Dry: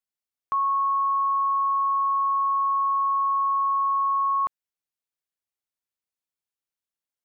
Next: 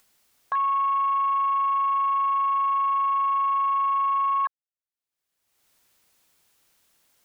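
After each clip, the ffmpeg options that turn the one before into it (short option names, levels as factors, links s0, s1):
-af "afwtdn=0.0251,acompressor=mode=upward:threshold=0.0224:ratio=2.5"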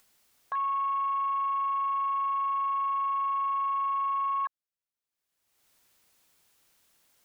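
-af "alimiter=limit=0.0668:level=0:latency=1,volume=0.841"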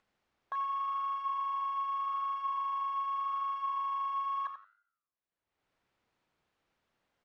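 -af "adynamicsmooth=sensitivity=2:basefreq=2400,flanger=delay=9.5:depth=4.7:regen=-90:speed=0.84:shape=sinusoidal,aecho=1:1:87|174:0.316|0.0538,volume=1.12"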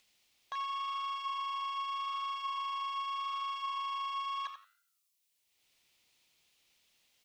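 -af "aexciter=amount=9.1:drive=2.5:freq=2200,volume=0.708"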